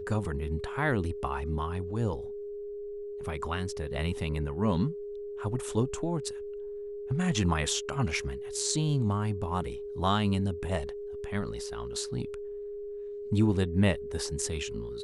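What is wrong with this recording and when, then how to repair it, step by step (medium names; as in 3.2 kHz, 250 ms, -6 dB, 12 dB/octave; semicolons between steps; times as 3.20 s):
whine 410 Hz -36 dBFS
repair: band-stop 410 Hz, Q 30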